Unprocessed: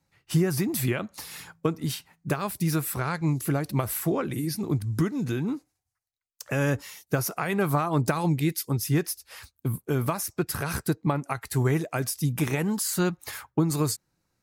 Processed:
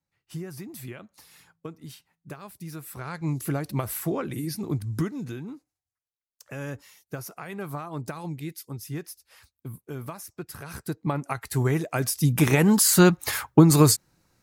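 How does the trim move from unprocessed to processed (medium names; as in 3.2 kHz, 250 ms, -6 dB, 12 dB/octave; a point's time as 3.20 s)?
2.75 s -13 dB
3.34 s -2 dB
5.00 s -2 dB
5.51 s -10 dB
10.67 s -10 dB
11.20 s 0 dB
11.76 s 0 dB
12.77 s +9 dB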